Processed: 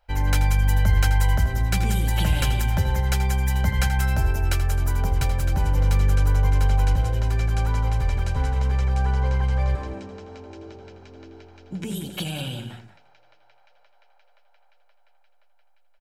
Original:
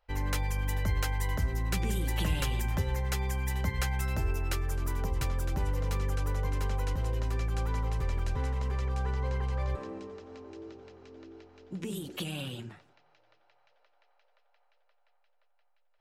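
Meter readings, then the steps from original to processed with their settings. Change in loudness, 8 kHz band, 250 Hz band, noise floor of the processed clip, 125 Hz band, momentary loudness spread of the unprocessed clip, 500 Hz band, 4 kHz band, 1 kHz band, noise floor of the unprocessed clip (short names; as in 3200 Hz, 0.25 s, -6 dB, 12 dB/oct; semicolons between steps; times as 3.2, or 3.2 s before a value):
+9.5 dB, +7.0 dB, +7.0 dB, -57 dBFS, +10.0 dB, 15 LU, +4.5 dB, +8.0 dB, +8.5 dB, -69 dBFS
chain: comb 1.3 ms, depth 40%; on a send: loudspeakers at several distances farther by 28 m -12 dB, 63 m -11 dB; on the sum: gain +6 dB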